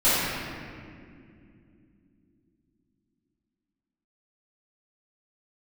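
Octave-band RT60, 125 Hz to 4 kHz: 4.0, 4.5, 3.1, 1.9, 2.0, 1.4 seconds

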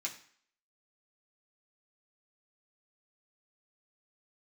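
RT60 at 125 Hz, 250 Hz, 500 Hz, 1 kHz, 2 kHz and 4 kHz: 0.45, 0.50, 0.50, 0.60, 0.60, 0.55 seconds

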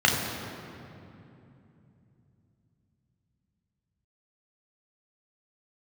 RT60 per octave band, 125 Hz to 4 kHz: 5.1, 4.3, 3.1, 2.6, 2.3, 1.7 seconds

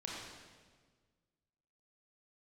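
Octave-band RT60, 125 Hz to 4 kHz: 2.1, 1.8, 1.7, 1.4, 1.4, 1.3 seconds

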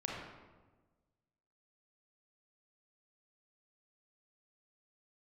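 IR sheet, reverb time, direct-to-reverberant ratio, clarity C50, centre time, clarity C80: 1.3 s, −3.0 dB, −0.5 dB, 77 ms, 2.5 dB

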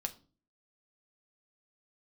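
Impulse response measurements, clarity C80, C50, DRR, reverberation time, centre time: 22.5 dB, 17.5 dB, 5.0 dB, 0.40 s, 5 ms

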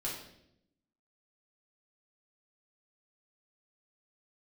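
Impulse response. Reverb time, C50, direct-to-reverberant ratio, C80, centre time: 0.75 s, 3.5 dB, −6.0 dB, 7.0 dB, 43 ms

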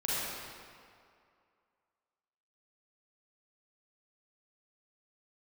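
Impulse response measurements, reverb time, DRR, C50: 2.3 s, −8.5 dB, −5.5 dB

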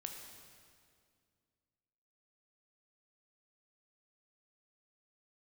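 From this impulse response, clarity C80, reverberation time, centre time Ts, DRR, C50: 5.5 dB, 2.2 s, 57 ms, 2.5 dB, 4.5 dB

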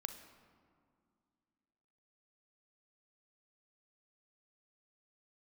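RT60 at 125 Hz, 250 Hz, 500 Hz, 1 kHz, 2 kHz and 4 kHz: 2.5, 3.0, 2.2, 2.2, 1.6, 1.1 seconds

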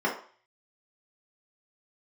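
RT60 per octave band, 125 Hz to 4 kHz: 0.35, 0.35, 0.40, 0.45, 0.45, 0.45 seconds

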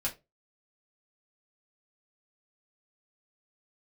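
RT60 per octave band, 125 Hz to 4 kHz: 0.30, 0.25, 0.25, 0.20, 0.20, 0.15 seconds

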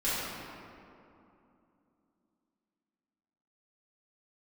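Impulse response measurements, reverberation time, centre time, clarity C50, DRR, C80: 2.8 s, 163 ms, −4.0 dB, −12.5 dB, −1.5 dB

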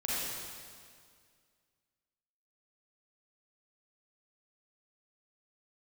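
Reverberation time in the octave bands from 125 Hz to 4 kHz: 2.2, 2.2, 2.1, 2.0, 1.9, 1.9 seconds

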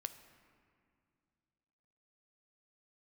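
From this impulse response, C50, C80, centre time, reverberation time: 11.5 dB, 12.5 dB, 14 ms, 2.3 s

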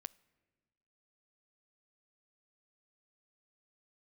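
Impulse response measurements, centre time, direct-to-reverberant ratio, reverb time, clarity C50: 2 ms, 20.5 dB, 1.3 s, 23.0 dB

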